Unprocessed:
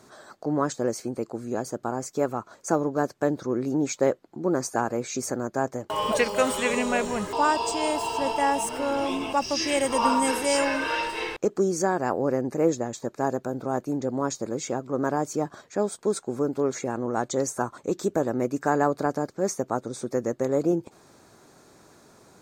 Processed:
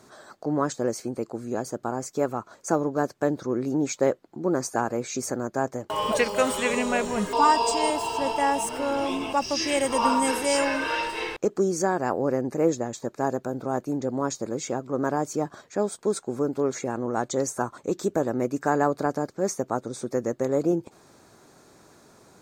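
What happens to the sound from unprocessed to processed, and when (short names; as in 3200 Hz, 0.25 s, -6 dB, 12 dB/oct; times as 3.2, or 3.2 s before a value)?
7.17–7.9 comb 4.3 ms, depth 82%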